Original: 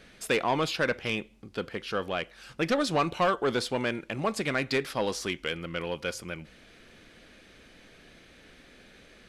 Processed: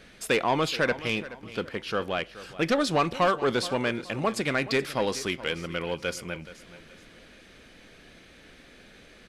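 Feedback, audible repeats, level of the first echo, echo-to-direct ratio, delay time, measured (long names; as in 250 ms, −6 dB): 34%, 3, −16.0 dB, −15.5 dB, 425 ms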